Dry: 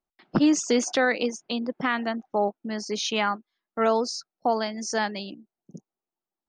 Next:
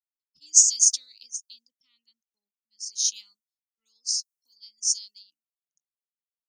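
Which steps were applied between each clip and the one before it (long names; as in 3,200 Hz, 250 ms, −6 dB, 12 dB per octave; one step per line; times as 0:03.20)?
inverse Chebyshev high-pass filter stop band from 1,800 Hz, stop band 60 dB
multiband upward and downward expander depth 100%
level +9 dB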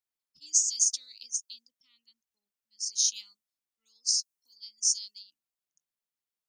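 downward compressor 12 to 1, threshold −23 dBFS, peak gain reduction 14 dB
level +2 dB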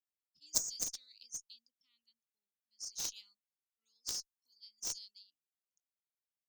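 harmonic generator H 2 −22 dB, 3 −7 dB, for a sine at −9 dBFS
level −1 dB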